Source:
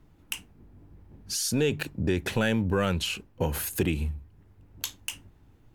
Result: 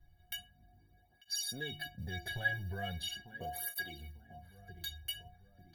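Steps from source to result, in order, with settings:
notch filter 5,500 Hz, Q 11
on a send: feedback echo with a low-pass in the loop 894 ms, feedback 45%, low-pass 1,400 Hz, level −15 dB
on the sum: noise that follows the level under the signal 33 dB
low-shelf EQ 270 Hz +7.5 dB
phaser with its sweep stopped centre 1,700 Hz, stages 8
in parallel at −2 dB: downward compressor, threshold −37 dBFS, peak gain reduction 15.5 dB
on the sum: stiff-string resonator 340 Hz, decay 0.5 s, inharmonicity 0.03
through-zero flanger with one copy inverted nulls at 0.4 Hz, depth 4.6 ms
level +15 dB

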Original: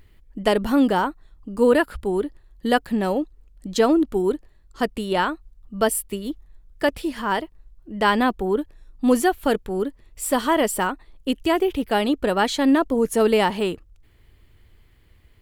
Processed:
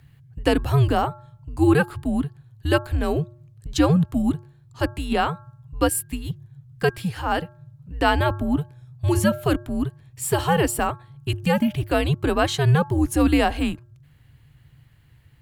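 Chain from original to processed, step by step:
hum removal 251.7 Hz, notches 7
frequency shifter −150 Hz

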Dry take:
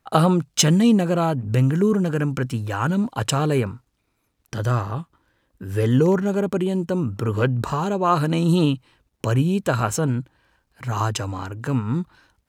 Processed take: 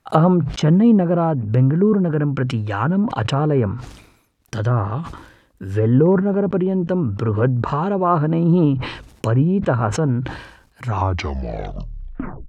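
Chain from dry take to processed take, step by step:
turntable brake at the end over 1.63 s
treble cut that deepens with the level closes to 1,200 Hz, closed at −17.5 dBFS
level that may fall only so fast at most 73 dB per second
level +3 dB

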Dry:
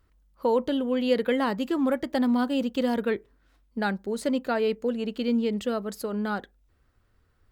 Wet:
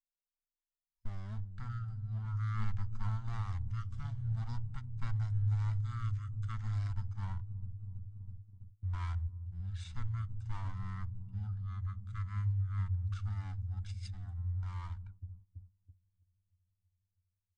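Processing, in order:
lower of the sound and its delayed copy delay 0.35 ms
noise reduction from a noise print of the clip's start 12 dB
in parallel at −4 dB: dead-zone distortion −44 dBFS
on the sum: guitar amp tone stack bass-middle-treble 10-0-1
notch filter 5,900 Hz, Q 7
on a send: delay with a low-pass on its return 139 ms, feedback 79%, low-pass 500 Hz, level −7 dB
on the sum: automatic gain control gain up to 6.5 dB
flat-topped bell 650 Hz −12 dB 2.4 octaves
noise gate −45 dBFS, range −23 dB
wrong playback speed 78 rpm record played at 33 rpm

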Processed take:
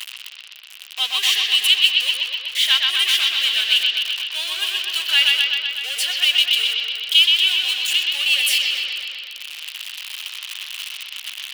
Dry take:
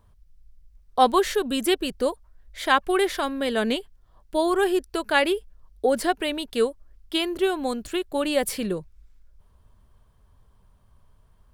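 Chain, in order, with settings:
converter with a step at zero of −21.5 dBFS
high-pass with resonance 2,900 Hz, resonance Q 5.2
bucket-brigade delay 125 ms, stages 4,096, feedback 72%, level −3 dB

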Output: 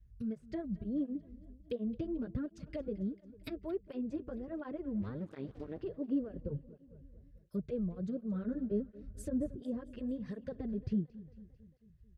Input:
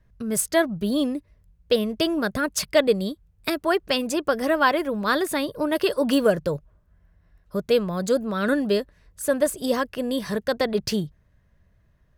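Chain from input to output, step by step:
0:05.02–0:05.81: sub-harmonics by changed cycles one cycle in 2, muted
treble cut that deepens with the level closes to 810 Hz, closed at −21 dBFS
0:08.71–0:09.60: low-shelf EQ 390 Hz +9 dB
in parallel at +3 dB: brickwall limiter −16 dBFS, peak gain reduction 8.5 dB
on the sum: guitar amp tone stack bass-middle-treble 10-0-1
on a send: repeating echo 223 ms, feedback 60%, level −19 dB
on the sum: through-zero flanger with one copy inverted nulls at 1.4 Hz, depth 7.7 ms
level +3 dB

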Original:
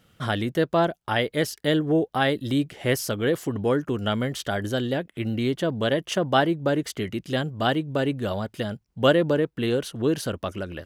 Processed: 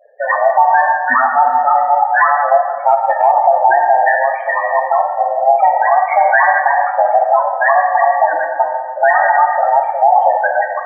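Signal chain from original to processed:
neighbouring bands swapped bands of 500 Hz
reverb reduction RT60 0.55 s
harmonic and percussive parts rebalanced harmonic −14 dB
single-sideband voice off tune −100 Hz 500–2,000 Hz
spectral peaks only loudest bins 8
0:04.81–0:05.72: double-tracking delay 48 ms −8 dB
dense smooth reverb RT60 1.7 s, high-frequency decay 0.8×, DRR 2 dB
0:02.92–0:03.32: transient designer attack +7 dB, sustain −2 dB
boost into a limiter +21.5 dB
level −1 dB

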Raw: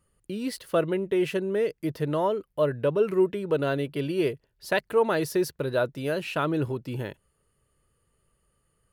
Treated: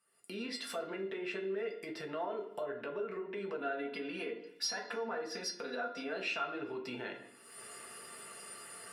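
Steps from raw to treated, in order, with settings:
camcorder AGC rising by 47 dB per second
0:03.60–0:06.12: comb filter 4.1 ms, depth 87%
treble cut that deepens with the level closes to 1,300 Hz, closed at −18 dBFS
brickwall limiter −18.5 dBFS, peak gain reduction 9.5 dB
high-pass filter 440 Hz 12 dB per octave
tuned comb filter 700 Hz, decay 0.25 s, mix 90%
convolution reverb RT60 0.65 s, pre-delay 3 ms, DRR 1.5 dB
downward compressor 1.5 to 1, threshold −54 dBFS, peak gain reduction 6 dB
level +12 dB

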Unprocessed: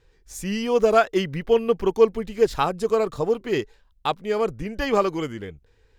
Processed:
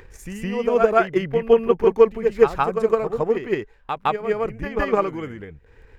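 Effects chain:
high shelf with overshoot 2,900 Hz −8.5 dB, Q 1.5
transient designer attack +9 dB, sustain +5 dB
on a send: backwards echo 162 ms −6 dB
on the sum: upward compression, threshold −29 dBFS
level −4.5 dB

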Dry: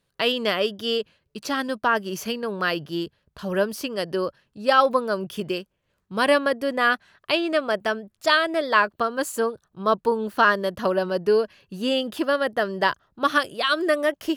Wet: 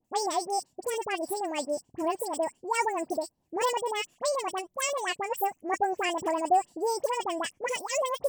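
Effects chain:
flat-topped bell 1,400 Hz −12 dB 2.7 octaves
all-pass dispersion highs, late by 82 ms, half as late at 970 Hz
wrong playback speed 45 rpm record played at 78 rpm
level −1.5 dB

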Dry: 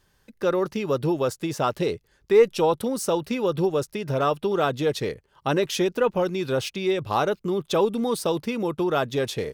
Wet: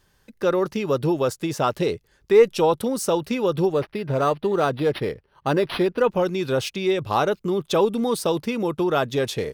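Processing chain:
0:03.73–0:06.02: linearly interpolated sample-rate reduction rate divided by 6×
level +2 dB

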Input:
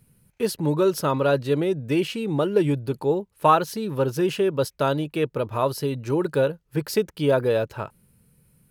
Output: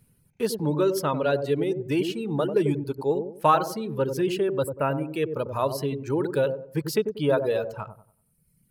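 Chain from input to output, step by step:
reverb reduction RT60 1.4 s
gain on a spectral selection 0:04.63–0:05.10, 2,900–7,400 Hz −27 dB
delay with a low-pass on its return 94 ms, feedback 31%, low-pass 680 Hz, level −6 dB
level −2 dB

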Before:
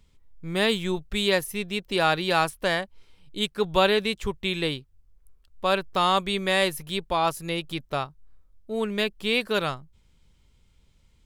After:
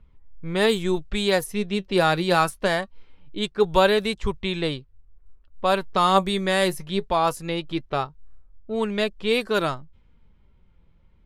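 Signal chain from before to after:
flanger 0.23 Hz, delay 0.7 ms, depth 5.3 ms, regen +67%
dynamic equaliser 2,800 Hz, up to −6 dB, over −43 dBFS, Q 1.1
low-pass that shuts in the quiet parts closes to 1,600 Hz, open at −25 dBFS
level +8 dB

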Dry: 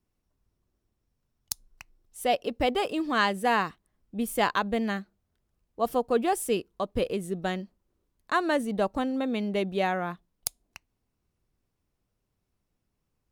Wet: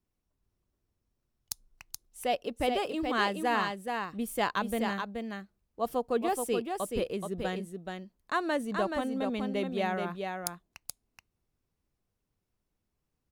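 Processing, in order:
single-tap delay 427 ms −5 dB
level −4.5 dB

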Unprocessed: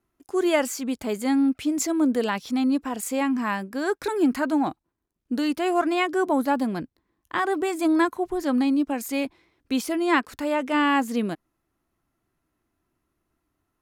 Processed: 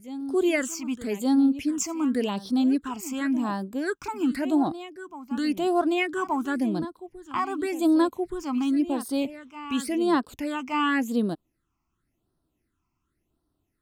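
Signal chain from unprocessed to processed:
backwards echo 1,174 ms −13.5 dB
all-pass phaser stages 8, 0.91 Hz, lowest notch 490–2,300 Hz

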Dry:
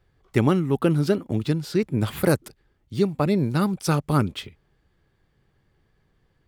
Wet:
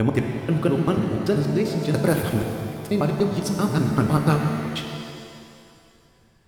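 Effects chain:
slices reordered back to front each 97 ms, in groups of 5
speech leveller within 5 dB 2 s
reverb with rising layers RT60 2.3 s, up +7 semitones, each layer −8 dB, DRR 3 dB
level −1 dB

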